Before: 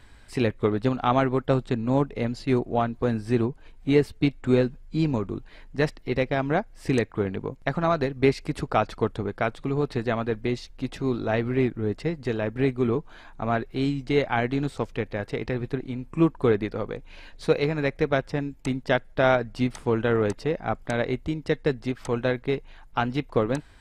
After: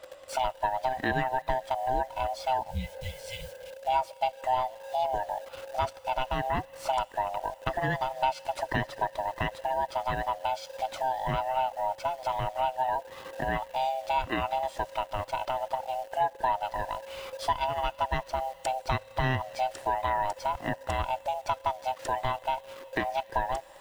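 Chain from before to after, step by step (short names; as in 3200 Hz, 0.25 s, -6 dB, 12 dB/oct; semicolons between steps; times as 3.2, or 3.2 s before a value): band-swap scrambler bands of 500 Hz; bell 190 Hz -9 dB 0.44 oct; in parallel at -6 dB: bit-crush 7-bit; on the sum: spectral repair 2.73–3.7, 200–2000 Hz after; on a send at -12.5 dB: pre-emphasis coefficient 0.9 + reverb RT60 3.6 s, pre-delay 32 ms; on the sum: compressor 2:1, threshold -32 dBFS, peak gain reduction 11.5 dB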